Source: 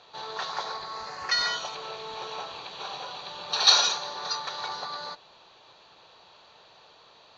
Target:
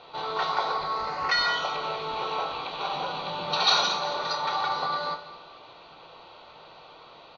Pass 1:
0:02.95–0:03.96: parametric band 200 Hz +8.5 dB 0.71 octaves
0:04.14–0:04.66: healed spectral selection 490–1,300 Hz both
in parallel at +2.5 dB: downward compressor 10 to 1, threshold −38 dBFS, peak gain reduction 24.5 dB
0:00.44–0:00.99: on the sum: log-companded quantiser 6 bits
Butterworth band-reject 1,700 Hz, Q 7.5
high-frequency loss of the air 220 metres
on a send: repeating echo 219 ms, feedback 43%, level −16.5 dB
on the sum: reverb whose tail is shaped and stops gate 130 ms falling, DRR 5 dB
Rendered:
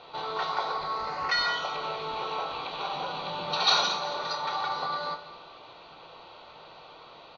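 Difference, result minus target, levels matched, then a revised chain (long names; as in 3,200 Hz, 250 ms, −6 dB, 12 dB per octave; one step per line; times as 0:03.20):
downward compressor: peak gain reduction +8 dB
0:02.95–0:03.96: parametric band 200 Hz +8.5 dB 0.71 octaves
0:04.14–0:04.66: healed spectral selection 490–1,300 Hz both
in parallel at +2.5 dB: downward compressor 10 to 1, threshold −29 dBFS, peak gain reduction 16.5 dB
0:00.44–0:00.99: on the sum: log-companded quantiser 6 bits
Butterworth band-reject 1,700 Hz, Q 7.5
high-frequency loss of the air 220 metres
on a send: repeating echo 219 ms, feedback 43%, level −16.5 dB
on the sum: reverb whose tail is shaped and stops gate 130 ms falling, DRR 5 dB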